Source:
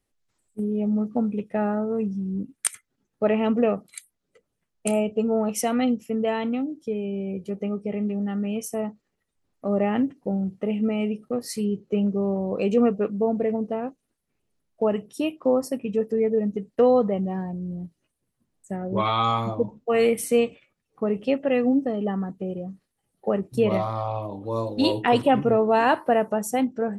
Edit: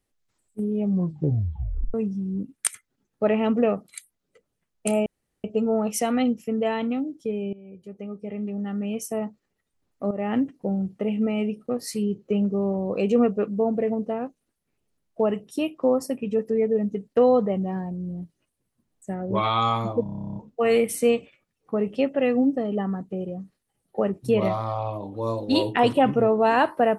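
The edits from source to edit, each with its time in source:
0:00.84: tape stop 1.10 s
0:05.06: splice in room tone 0.38 s
0:07.15–0:08.69: fade in, from −18.5 dB
0:09.73–0:09.99: fade in, from −13 dB
0:19.65: stutter 0.03 s, 12 plays

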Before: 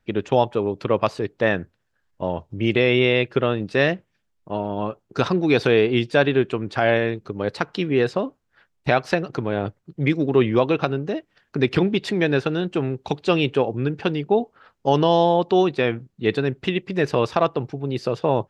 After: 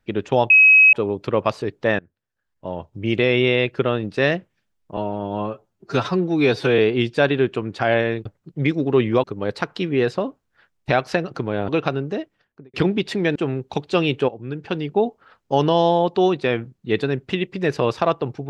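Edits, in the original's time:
0:00.50: insert tone 2,550 Hz −7.5 dBFS 0.43 s
0:01.56–0:02.78: fade in, from −23.5 dB
0:04.54–0:05.75: time-stretch 1.5×
0:09.67–0:10.65: move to 0:07.22
0:11.16–0:11.70: fade out and dull
0:12.32–0:12.70: remove
0:13.63–0:14.28: fade in, from −13 dB

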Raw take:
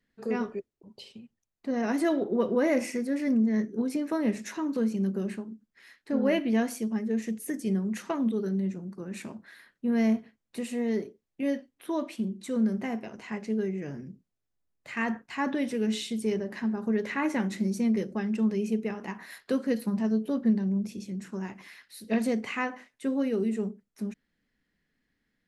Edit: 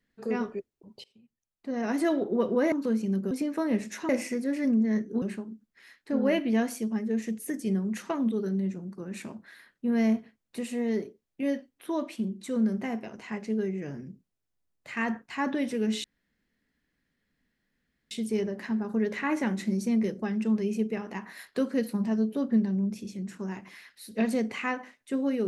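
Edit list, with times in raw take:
0:01.04–0:02.01: fade in linear, from −20.5 dB
0:02.72–0:03.85: swap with 0:04.63–0:05.22
0:16.04: splice in room tone 2.07 s

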